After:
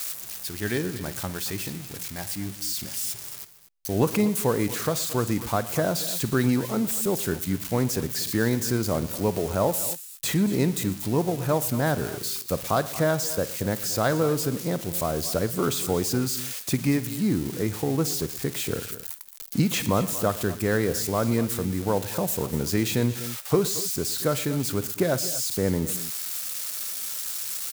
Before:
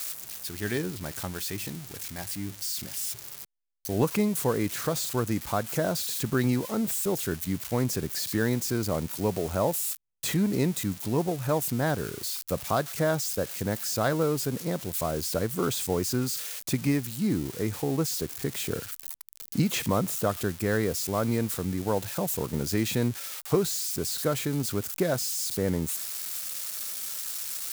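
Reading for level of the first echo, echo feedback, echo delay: -18.0 dB, no regular repeats, 52 ms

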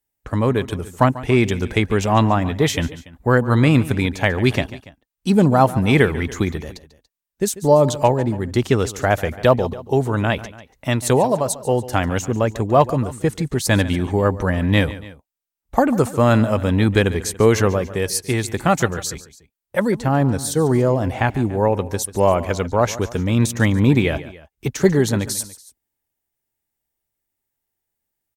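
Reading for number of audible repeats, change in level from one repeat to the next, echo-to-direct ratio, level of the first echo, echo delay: 2, -5.0 dB, -15.5 dB, -16.5 dB, 143 ms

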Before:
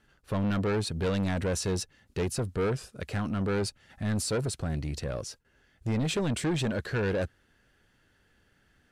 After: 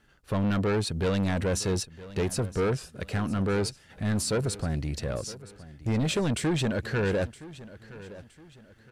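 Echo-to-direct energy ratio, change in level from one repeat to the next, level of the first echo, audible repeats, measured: -17.0 dB, -8.5 dB, -17.5 dB, 3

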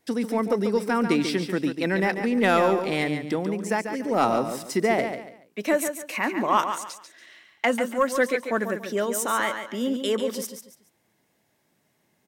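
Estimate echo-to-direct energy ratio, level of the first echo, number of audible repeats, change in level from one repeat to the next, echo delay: -7.5 dB, -8.0 dB, 3, -10.5 dB, 142 ms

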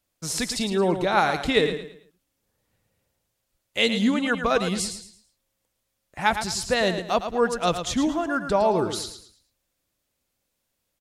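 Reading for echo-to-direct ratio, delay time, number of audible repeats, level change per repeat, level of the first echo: -8.5 dB, 110 ms, 3, -10.0 dB, -9.0 dB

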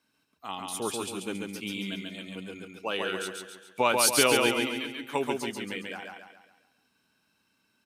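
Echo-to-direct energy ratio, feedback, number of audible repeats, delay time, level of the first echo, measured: -2.0 dB, 46%, 5, 138 ms, -3.0 dB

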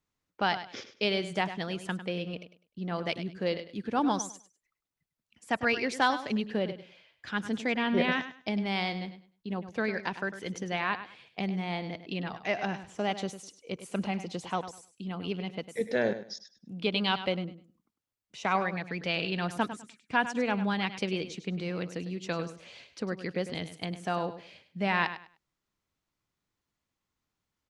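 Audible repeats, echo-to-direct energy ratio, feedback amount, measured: 2, -12.0 dB, 22%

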